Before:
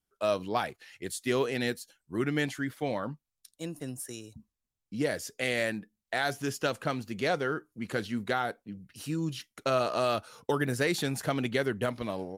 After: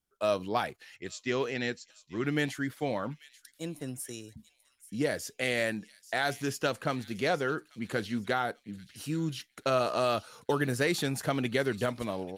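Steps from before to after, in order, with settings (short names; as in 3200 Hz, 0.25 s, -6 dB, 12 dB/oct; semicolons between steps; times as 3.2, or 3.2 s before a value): 0.96–2.25 rippled Chebyshev low-pass 7600 Hz, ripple 3 dB; thin delay 0.838 s, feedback 36%, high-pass 3200 Hz, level -14 dB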